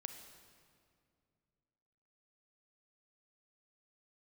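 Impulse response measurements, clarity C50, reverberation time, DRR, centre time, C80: 7.5 dB, 2.3 s, 6.5 dB, 30 ms, 8.5 dB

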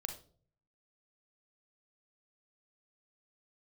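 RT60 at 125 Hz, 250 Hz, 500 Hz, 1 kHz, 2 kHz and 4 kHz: 0.90, 0.70, 0.60, 0.40, 0.30, 0.35 seconds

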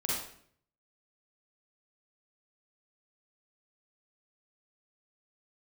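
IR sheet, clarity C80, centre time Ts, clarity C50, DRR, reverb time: 4.0 dB, 66 ms, −2.5 dB, −6.0 dB, 0.60 s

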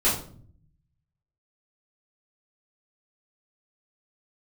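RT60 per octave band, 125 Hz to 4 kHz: 1.2, 0.90, 0.60, 0.45, 0.35, 0.35 seconds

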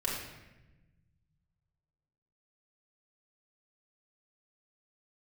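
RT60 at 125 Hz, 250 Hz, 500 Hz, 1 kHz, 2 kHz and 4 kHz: 2.7, 1.9, 1.2, 0.95, 1.1, 0.80 seconds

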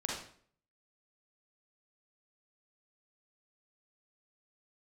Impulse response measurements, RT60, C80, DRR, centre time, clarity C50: 0.55 s, 6.0 dB, −3.0 dB, 50 ms, 0.5 dB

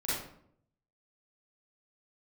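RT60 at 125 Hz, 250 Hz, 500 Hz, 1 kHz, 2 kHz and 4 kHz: 1.0, 0.85, 0.70, 0.60, 0.50, 0.40 seconds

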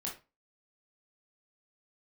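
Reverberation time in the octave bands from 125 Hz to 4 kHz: 0.35, 0.30, 0.30, 0.30, 0.25, 0.25 seconds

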